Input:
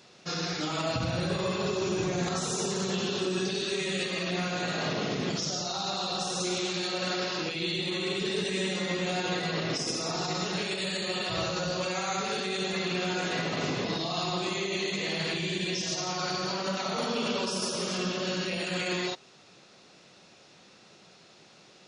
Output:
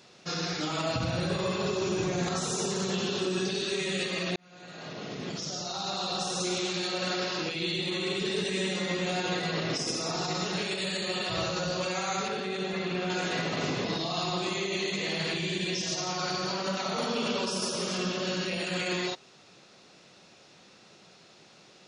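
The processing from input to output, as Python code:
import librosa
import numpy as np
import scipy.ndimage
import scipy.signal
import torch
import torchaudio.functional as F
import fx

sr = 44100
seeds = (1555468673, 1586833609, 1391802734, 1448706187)

y = fx.lowpass(x, sr, hz=2300.0, slope=6, at=(12.28, 13.1))
y = fx.edit(y, sr, fx.fade_in_span(start_s=4.36, length_s=1.75), tone=tone)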